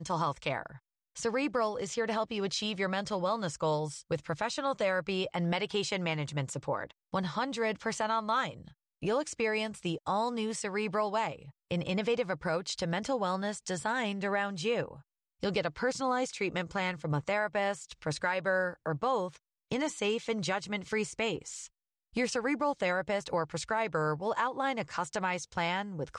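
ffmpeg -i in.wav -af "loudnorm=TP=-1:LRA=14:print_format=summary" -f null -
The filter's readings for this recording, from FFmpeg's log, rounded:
Input Integrated:    -32.8 LUFS
Input True Peak:     -17.6 dBTP
Input LRA:             0.9 LU
Input Threshold:     -43.0 LUFS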